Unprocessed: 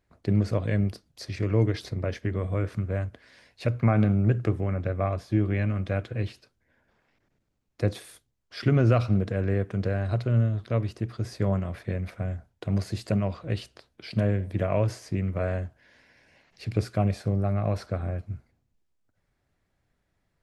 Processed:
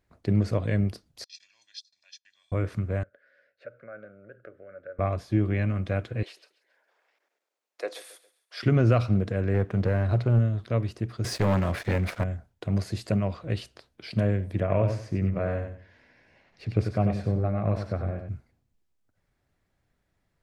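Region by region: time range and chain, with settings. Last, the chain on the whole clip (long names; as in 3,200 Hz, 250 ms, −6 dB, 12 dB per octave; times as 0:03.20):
0:01.24–0:02.52: noise gate −38 dBFS, range −23 dB + flat-topped band-pass 5,000 Hz, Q 1.7 + comb filter 1.2 ms, depth 87%
0:03.03–0:04.99: downward compressor 2 to 1, threshold −31 dBFS + pair of resonant band-passes 910 Hz, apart 1.4 octaves
0:06.23–0:08.63: high-pass filter 460 Hz 24 dB per octave + repeating echo 136 ms, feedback 38%, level −17.5 dB
0:09.54–0:10.39: high-shelf EQ 4,700 Hz −11.5 dB + leveller curve on the samples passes 1
0:11.24–0:12.24: low-shelf EQ 310 Hz −6 dB + leveller curve on the samples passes 3
0:14.60–0:18.29: low-pass filter 2,600 Hz 6 dB per octave + repeating echo 94 ms, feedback 24%, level −7 dB
whole clip: no processing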